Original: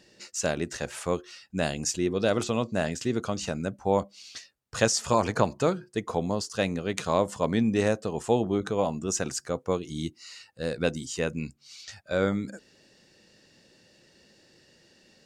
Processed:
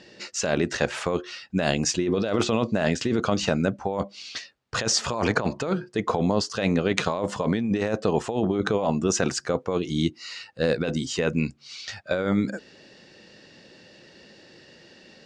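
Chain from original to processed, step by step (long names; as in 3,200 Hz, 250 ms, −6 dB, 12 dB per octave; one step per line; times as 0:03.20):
low-pass filter 4,500 Hz 12 dB per octave
low-shelf EQ 94 Hz −8.5 dB
compressor whose output falls as the input rises −30 dBFS, ratio −1
level +7 dB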